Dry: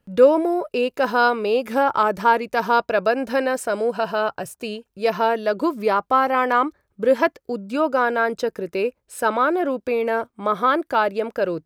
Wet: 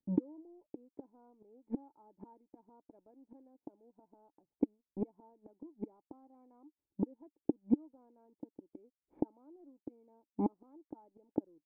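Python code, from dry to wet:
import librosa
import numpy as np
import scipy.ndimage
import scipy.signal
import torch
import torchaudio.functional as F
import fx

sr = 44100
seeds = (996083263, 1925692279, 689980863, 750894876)

y = fx.leveller(x, sr, passes=1)
y = fx.gate_flip(y, sr, shuts_db=-16.0, range_db=-31)
y = fx.power_curve(y, sr, exponent=1.4)
y = fx.formant_cascade(y, sr, vowel='u')
y = y * 10.0 ** (11.0 / 20.0)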